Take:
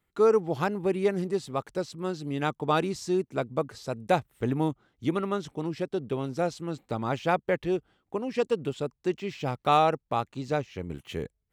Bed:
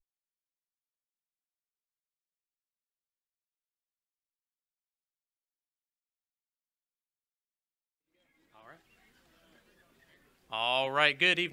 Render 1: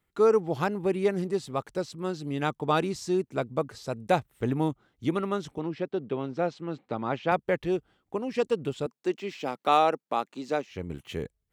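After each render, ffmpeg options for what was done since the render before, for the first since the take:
ffmpeg -i in.wav -filter_complex "[0:a]asettb=1/sr,asplit=3[link_01][link_02][link_03];[link_01]atrim=end=5.584[link_04];[link_02]atrim=start=5.58:end=7.32,asetpts=PTS-STARTPTS,afade=type=in:duration=0.004:curve=qsin,afade=type=out:start_time=1.736:duration=0.004:curve=qsin,highpass=150,lowpass=3400[link_05];[link_03]atrim=start=7.316[link_06];[link_04][link_05]acrossfade=duration=0.004:curve1=hsin:curve2=qsin[link_07];[link_07][link_06]acrossfade=duration=0.004:curve1=qsin:curve2=hsin,asettb=1/sr,asplit=3[link_08][link_09][link_10];[link_08]atrim=end=8.864[link_11];[link_09]atrim=start=8.86:end=10.71,asetpts=PTS-STARTPTS,afade=type=in:duration=0.004:curve=qsin,afade=type=out:start_time=1.846:duration=0.004:curve=qsin,highpass=frequency=210:width=0.5412,highpass=frequency=210:width=1.3066[link_12];[link_10]atrim=start=10.706[link_13];[link_11][link_12]acrossfade=duration=0.004:curve1=hsin:curve2=qsin[link_14];[link_14][link_13]acrossfade=duration=0.004:curve1=qsin:curve2=hsin" out.wav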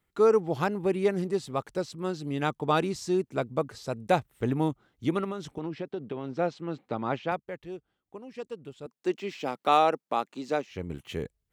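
ffmpeg -i in.wav -filter_complex "[0:a]asettb=1/sr,asplit=3[link_01][link_02][link_03];[link_01]atrim=end=5.244[link_04];[link_02]atrim=start=5.24:end=6.33,asetpts=PTS-STARTPTS,afade=type=in:duration=0.004:curve=qsin,afade=type=out:start_time=1.086:duration=0.004:curve=qsin,acompressor=threshold=-29dB:ratio=6:attack=3.2:release=140:knee=1:detection=peak[link_05];[link_03]atrim=start=6.326[link_06];[link_04][link_05]acrossfade=duration=0.004:curve1=hsin:curve2=qsin[link_07];[link_07][link_06]acrossfade=duration=0.004:curve1=qsin:curve2=hsin,asplit=3[link_08][link_09][link_10];[link_08]atrim=end=7.43,asetpts=PTS-STARTPTS,afade=type=out:start_time=7.16:duration=0.27:silence=0.251189[link_11];[link_09]atrim=start=7.43:end=8.82,asetpts=PTS-STARTPTS,volume=-12dB[link_12];[link_10]atrim=start=8.82,asetpts=PTS-STARTPTS,afade=type=in:duration=0.27:silence=0.251189[link_13];[link_11][link_12][link_13]concat=n=3:v=0:a=1" out.wav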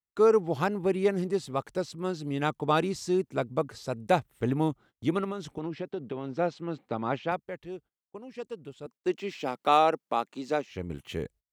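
ffmpeg -i in.wav -af "agate=range=-25dB:threshold=-51dB:ratio=16:detection=peak" out.wav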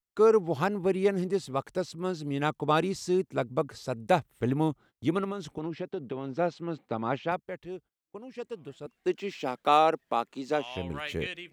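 ffmpeg -i in.wav -i bed.wav -filter_complex "[1:a]volume=-12dB[link_01];[0:a][link_01]amix=inputs=2:normalize=0" out.wav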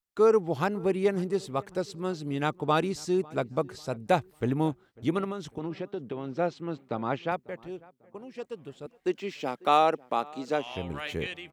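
ffmpeg -i in.wav -filter_complex "[0:a]asplit=2[link_01][link_02];[link_02]adelay=546,lowpass=frequency=2100:poles=1,volume=-23.5dB,asplit=2[link_03][link_04];[link_04]adelay=546,lowpass=frequency=2100:poles=1,volume=0.4,asplit=2[link_05][link_06];[link_06]adelay=546,lowpass=frequency=2100:poles=1,volume=0.4[link_07];[link_01][link_03][link_05][link_07]amix=inputs=4:normalize=0" out.wav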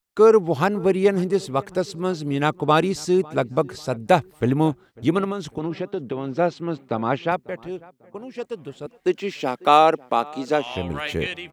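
ffmpeg -i in.wav -af "volume=7.5dB" out.wav

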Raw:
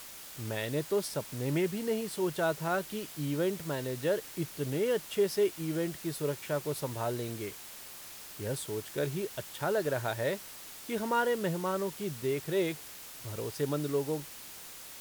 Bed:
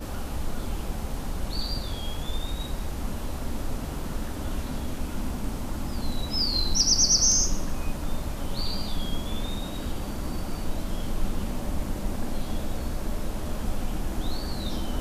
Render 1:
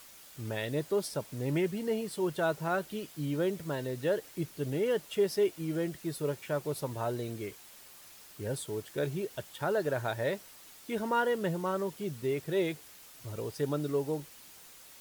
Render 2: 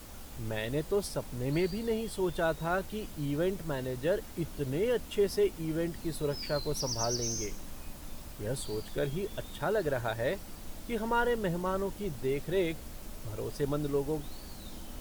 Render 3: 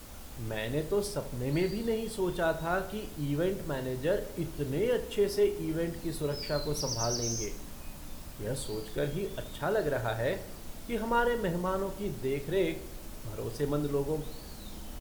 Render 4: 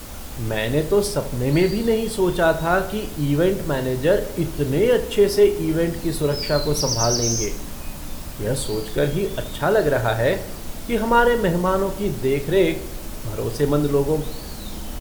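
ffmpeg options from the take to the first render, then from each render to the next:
ffmpeg -i in.wav -af "afftdn=noise_reduction=7:noise_floor=-47" out.wav
ffmpeg -i in.wav -i bed.wav -filter_complex "[1:a]volume=-15dB[link_01];[0:a][link_01]amix=inputs=2:normalize=0" out.wav
ffmpeg -i in.wav -filter_complex "[0:a]asplit=2[link_01][link_02];[link_02]adelay=34,volume=-10.5dB[link_03];[link_01][link_03]amix=inputs=2:normalize=0,asplit=2[link_04][link_05];[link_05]adelay=78,lowpass=frequency=2000:poles=1,volume=-13dB,asplit=2[link_06][link_07];[link_07]adelay=78,lowpass=frequency=2000:poles=1,volume=0.55,asplit=2[link_08][link_09];[link_09]adelay=78,lowpass=frequency=2000:poles=1,volume=0.55,asplit=2[link_10][link_11];[link_11]adelay=78,lowpass=frequency=2000:poles=1,volume=0.55,asplit=2[link_12][link_13];[link_13]adelay=78,lowpass=frequency=2000:poles=1,volume=0.55,asplit=2[link_14][link_15];[link_15]adelay=78,lowpass=frequency=2000:poles=1,volume=0.55[link_16];[link_04][link_06][link_08][link_10][link_12][link_14][link_16]amix=inputs=7:normalize=0" out.wav
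ffmpeg -i in.wav -af "volume=11.5dB" out.wav

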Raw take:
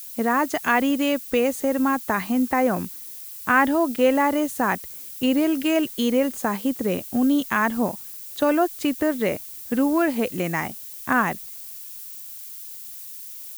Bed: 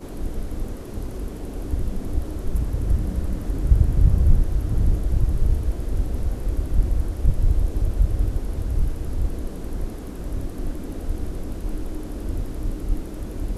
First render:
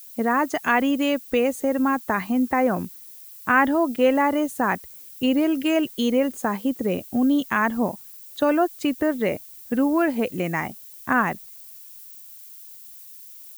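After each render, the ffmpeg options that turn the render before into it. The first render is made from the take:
ffmpeg -i in.wav -af "afftdn=noise_reduction=7:noise_floor=-38" out.wav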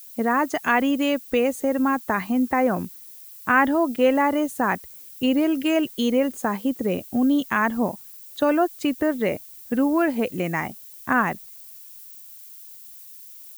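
ffmpeg -i in.wav -af anull out.wav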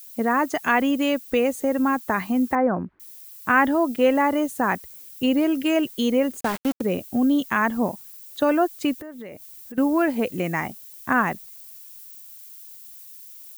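ffmpeg -i in.wav -filter_complex "[0:a]asettb=1/sr,asplit=3[link_01][link_02][link_03];[link_01]atrim=end=2.554[link_04];[link_02]atrim=start=2.55:end=3,asetpts=PTS-STARTPTS,afade=type=in:duration=0.004:curve=qsin,afade=type=out:start_time=0.446:duration=0.004:curve=qsin,lowpass=frequency=1700:width=0.5412,lowpass=frequency=1700:width=1.3066[link_05];[link_03]atrim=start=2.996[link_06];[link_04][link_05]acrossfade=duration=0.004:curve1=hsin:curve2=qsin[link_07];[link_07][link_06]acrossfade=duration=0.004:curve1=qsin:curve2=hsin,asplit=3[link_08][link_09][link_10];[link_08]afade=type=out:start_time=6.39:duration=0.02[link_11];[link_09]aeval=exprs='val(0)*gte(abs(val(0)),0.0531)':channel_layout=same,afade=type=in:start_time=6.39:duration=0.02,afade=type=out:start_time=6.8:duration=0.02[link_12];[link_10]afade=type=in:start_time=6.8:duration=0.02[link_13];[link_11][link_12][link_13]amix=inputs=3:normalize=0,asettb=1/sr,asplit=3[link_14][link_15][link_16];[link_14]atrim=end=8.994[link_17];[link_15]atrim=start=8.99:end=9.78,asetpts=PTS-STARTPTS,afade=type=in:duration=0.004:curve=qsin,afade=type=out:start_time=0.786:duration=0.004:curve=qsin,acompressor=threshold=-36dB:ratio=5:attack=3.2:release=140:knee=1:detection=peak[link_18];[link_16]atrim=start=9.776[link_19];[link_17][link_18]acrossfade=duration=0.004:curve1=hsin:curve2=qsin[link_20];[link_20][link_19]acrossfade=duration=0.004:curve1=qsin:curve2=hsin" out.wav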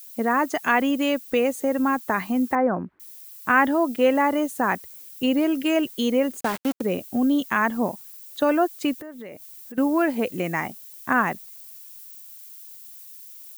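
ffmpeg -i in.wav -af "lowshelf=frequency=86:gain=-11" out.wav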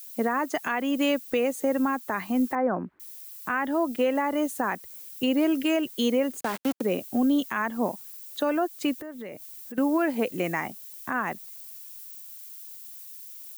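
ffmpeg -i in.wav -filter_complex "[0:a]acrossover=split=180[link_01][link_02];[link_01]acompressor=threshold=-44dB:ratio=6[link_03];[link_03][link_02]amix=inputs=2:normalize=0,alimiter=limit=-15.5dB:level=0:latency=1:release=254" out.wav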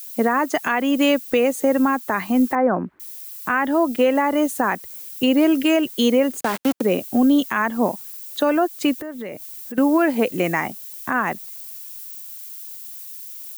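ffmpeg -i in.wav -af "volume=7dB" out.wav

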